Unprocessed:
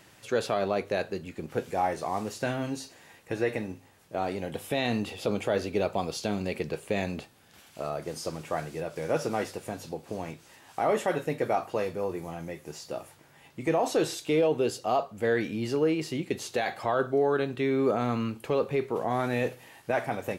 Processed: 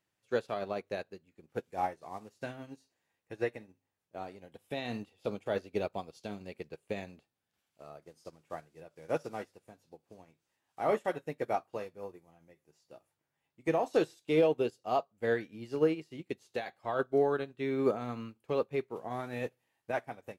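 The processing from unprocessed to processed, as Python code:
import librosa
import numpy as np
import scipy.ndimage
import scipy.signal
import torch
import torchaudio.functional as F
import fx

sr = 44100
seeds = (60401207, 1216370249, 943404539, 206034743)

y = fx.upward_expand(x, sr, threshold_db=-40.0, expansion=2.5)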